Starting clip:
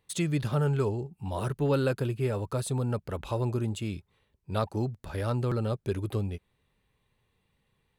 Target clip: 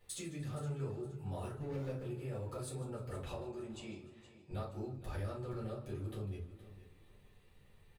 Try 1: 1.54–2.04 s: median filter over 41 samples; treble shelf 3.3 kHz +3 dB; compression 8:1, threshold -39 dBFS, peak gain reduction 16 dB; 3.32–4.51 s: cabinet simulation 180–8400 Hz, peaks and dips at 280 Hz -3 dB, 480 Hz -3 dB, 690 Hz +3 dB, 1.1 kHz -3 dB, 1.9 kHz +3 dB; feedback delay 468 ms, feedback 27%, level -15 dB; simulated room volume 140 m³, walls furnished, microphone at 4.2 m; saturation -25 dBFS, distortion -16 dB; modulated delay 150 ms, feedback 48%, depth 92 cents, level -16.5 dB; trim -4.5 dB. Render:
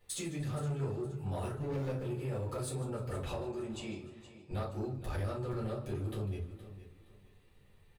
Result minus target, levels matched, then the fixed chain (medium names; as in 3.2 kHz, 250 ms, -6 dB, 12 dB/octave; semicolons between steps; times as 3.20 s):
compression: peak gain reduction -6 dB
1.54–2.04 s: median filter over 41 samples; treble shelf 3.3 kHz +3 dB; compression 8:1, threshold -46 dBFS, peak gain reduction 22 dB; 3.32–4.51 s: cabinet simulation 180–8400 Hz, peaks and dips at 280 Hz -3 dB, 480 Hz -3 dB, 690 Hz +3 dB, 1.1 kHz -3 dB, 1.9 kHz +3 dB; feedback delay 468 ms, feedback 27%, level -15 dB; simulated room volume 140 m³, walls furnished, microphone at 4.2 m; saturation -25 dBFS, distortion -25 dB; modulated delay 150 ms, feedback 48%, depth 92 cents, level -16.5 dB; trim -4.5 dB